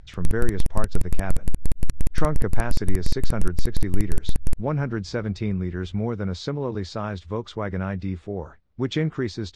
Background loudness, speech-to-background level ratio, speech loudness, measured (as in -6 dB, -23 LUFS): -31.5 LUFS, 2.5 dB, -29.0 LUFS